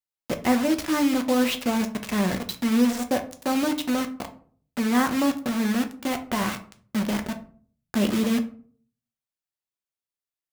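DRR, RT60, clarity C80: 6.0 dB, 0.50 s, 18.0 dB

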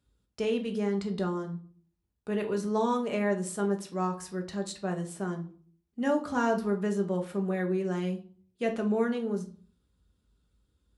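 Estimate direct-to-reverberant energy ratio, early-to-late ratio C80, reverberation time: 3.0 dB, 18.5 dB, 0.45 s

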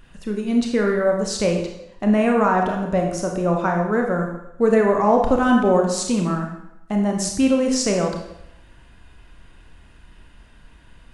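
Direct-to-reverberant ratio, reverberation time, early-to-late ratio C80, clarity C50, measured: 1.5 dB, 0.80 s, 7.5 dB, 4.5 dB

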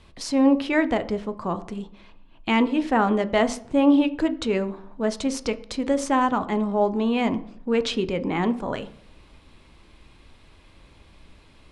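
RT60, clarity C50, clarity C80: 0.60 s, 16.5 dB, 20.0 dB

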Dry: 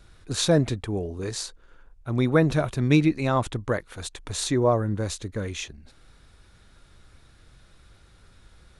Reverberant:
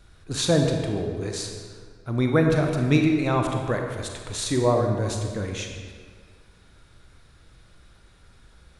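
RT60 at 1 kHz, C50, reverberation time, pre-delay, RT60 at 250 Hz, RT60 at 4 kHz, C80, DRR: 1.9 s, 3.5 dB, 1.9 s, 30 ms, 1.9 s, 1.2 s, 5.0 dB, 2.5 dB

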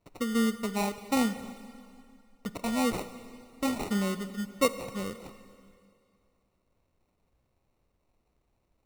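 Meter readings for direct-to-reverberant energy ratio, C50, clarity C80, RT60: 11.5 dB, 12.5 dB, 13.5 dB, 2.4 s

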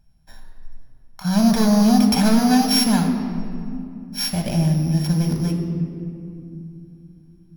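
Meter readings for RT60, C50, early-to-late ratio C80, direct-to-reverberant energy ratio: 2.6 s, 5.5 dB, 6.5 dB, 3.0 dB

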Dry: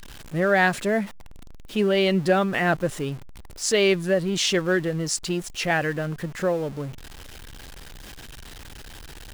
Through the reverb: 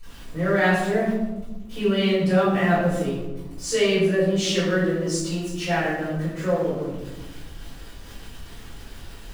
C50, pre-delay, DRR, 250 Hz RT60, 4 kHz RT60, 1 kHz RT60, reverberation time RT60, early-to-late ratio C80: 1.0 dB, 3 ms, -15.5 dB, 2.1 s, 0.60 s, 0.95 s, 1.1 s, 3.5 dB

